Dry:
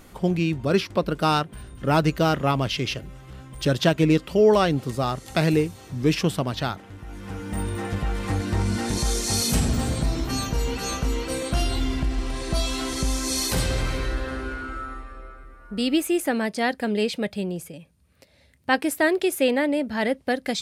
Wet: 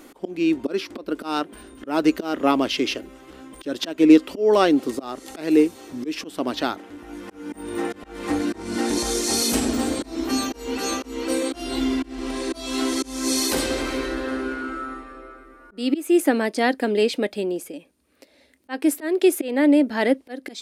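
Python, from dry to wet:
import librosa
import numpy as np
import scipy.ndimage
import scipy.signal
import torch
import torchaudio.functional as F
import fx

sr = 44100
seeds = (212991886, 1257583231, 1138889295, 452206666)

y = fx.auto_swell(x, sr, attack_ms=260.0)
y = fx.low_shelf_res(y, sr, hz=200.0, db=-12.5, q=3.0)
y = y * librosa.db_to_amplitude(2.0)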